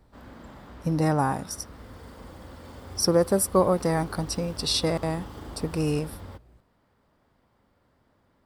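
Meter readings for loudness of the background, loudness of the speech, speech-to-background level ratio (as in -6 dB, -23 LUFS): -43.5 LUFS, -26.0 LUFS, 17.5 dB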